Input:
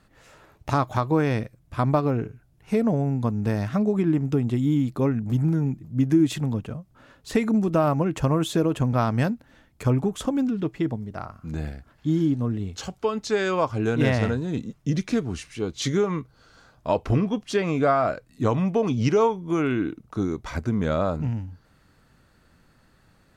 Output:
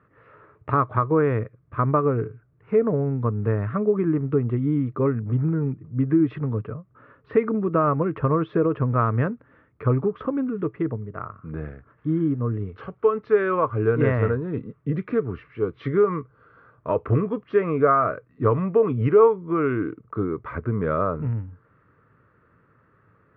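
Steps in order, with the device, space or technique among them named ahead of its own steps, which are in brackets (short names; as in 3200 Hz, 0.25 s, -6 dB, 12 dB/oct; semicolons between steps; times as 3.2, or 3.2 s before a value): elliptic low-pass 5700 Hz; bass cabinet (speaker cabinet 88–2000 Hz, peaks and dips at 110 Hz +6 dB, 220 Hz -4 dB, 440 Hz +8 dB, 770 Hz -9 dB, 1200 Hz +9 dB)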